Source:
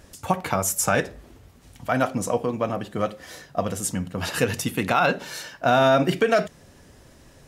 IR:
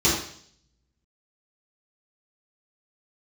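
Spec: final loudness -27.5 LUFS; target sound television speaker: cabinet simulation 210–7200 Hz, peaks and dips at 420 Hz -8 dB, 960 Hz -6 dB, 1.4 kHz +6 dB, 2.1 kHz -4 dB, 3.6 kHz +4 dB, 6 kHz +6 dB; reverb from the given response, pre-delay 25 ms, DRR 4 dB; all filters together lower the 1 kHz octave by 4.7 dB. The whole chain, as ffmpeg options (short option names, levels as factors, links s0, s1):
-filter_complex "[0:a]equalizer=f=1000:t=o:g=-9,asplit=2[s0][s1];[1:a]atrim=start_sample=2205,adelay=25[s2];[s1][s2]afir=irnorm=-1:irlink=0,volume=0.0944[s3];[s0][s3]amix=inputs=2:normalize=0,highpass=f=210:w=0.5412,highpass=f=210:w=1.3066,equalizer=f=420:t=q:w=4:g=-8,equalizer=f=960:t=q:w=4:g=-6,equalizer=f=1400:t=q:w=4:g=6,equalizer=f=2100:t=q:w=4:g=-4,equalizer=f=3600:t=q:w=4:g=4,equalizer=f=6000:t=q:w=4:g=6,lowpass=f=7200:w=0.5412,lowpass=f=7200:w=1.3066,volume=0.75"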